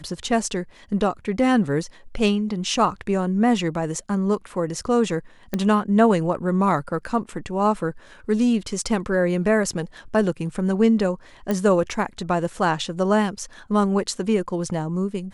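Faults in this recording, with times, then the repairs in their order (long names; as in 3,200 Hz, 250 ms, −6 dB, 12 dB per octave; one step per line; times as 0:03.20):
0:05.54: click −11 dBFS
0:11.51: click −11 dBFS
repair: click removal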